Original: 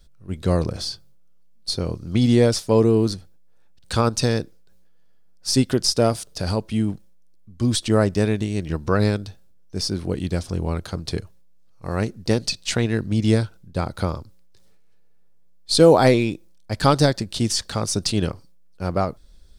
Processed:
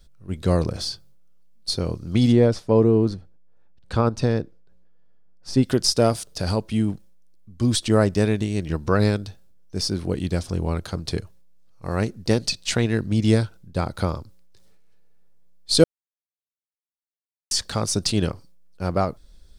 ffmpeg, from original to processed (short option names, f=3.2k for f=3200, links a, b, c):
-filter_complex "[0:a]asplit=3[a][b][c];[a]afade=t=out:st=2.31:d=0.02[d];[b]lowpass=f=1.3k:p=1,afade=t=in:st=2.31:d=0.02,afade=t=out:st=5.62:d=0.02[e];[c]afade=t=in:st=5.62:d=0.02[f];[d][e][f]amix=inputs=3:normalize=0,asplit=3[g][h][i];[g]atrim=end=15.84,asetpts=PTS-STARTPTS,afade=t=out:st=15.836:d=0.004:c=hsin[j];[h]atrim=start=15.84:end=17.51,asetpts=PTS-STARTPTS,volume=0[k];[i]atrim=start=17.51,asetpts=PTS-STARTPTS,afade=t=in:d=0.004:c=hsin[l];[j][k][l]concat=n=3:v=0:a=1"